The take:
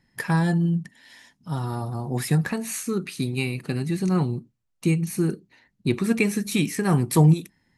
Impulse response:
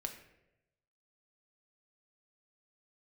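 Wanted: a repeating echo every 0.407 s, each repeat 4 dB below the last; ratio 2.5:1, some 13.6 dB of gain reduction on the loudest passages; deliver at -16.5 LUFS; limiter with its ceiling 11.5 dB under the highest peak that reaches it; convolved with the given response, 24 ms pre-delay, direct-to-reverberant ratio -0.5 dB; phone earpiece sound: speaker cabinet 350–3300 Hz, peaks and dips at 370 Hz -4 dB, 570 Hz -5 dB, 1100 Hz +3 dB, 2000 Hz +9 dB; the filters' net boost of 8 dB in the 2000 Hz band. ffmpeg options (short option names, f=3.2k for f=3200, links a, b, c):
-filter_complex "[0:a]equalizer=f=2k:t=o:g=5,acompressor=threshold=-33dB:ratio=2.5,alimiter=level_in=4dB:limit=-24dB:level=0:latency=1,volume=-4dB,aecho=1:1:407|814|1221|1628|2035|2442|2849|3256|3663:0.631|0.398|0.25|0.158|0.0994|0.0626|0.0394|0.0249|0.0157,asplit=2[a][b];[1:a]atrim=start_sample=2205,adelay=24[c];[b][c]afir=irnorm=-1:irlink=0,volume=2dB[d];[a][d]amix=inputs=2:normalize=0,highpass=350,equalizer=f=370:t=q:w=4:g=-4,equalizer=f=570:t=q:w=4:g=-5,equalizer=f=1.1k:t=q:w=4:g=3,equalizer=f=2k:t=q:w=4:g=9,lowpass=f=3.3k:w=0.5412,lowpass=f=3.3k:w=1.3066,volume=19.5dB"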